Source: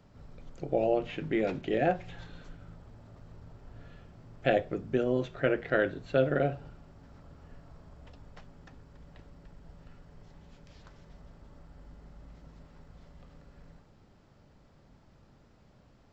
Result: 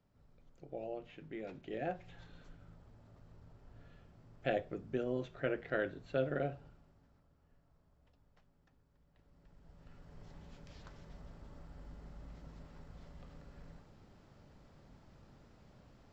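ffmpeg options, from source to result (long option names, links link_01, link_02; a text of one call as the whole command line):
ffmpeg -i in.wav -af "volume=10dB,afade=type=in:start_time=1.42:duration=1.01:silence=0.421697,afade=type=out:start_time=6.44:duration=0.83:silence=0.298538,afade=type=in:start_time=9.13:duration=0.62:silence=0.281838,afade=type=in:start_time=9.75:duration=0.54:silence=0.421697" out.wav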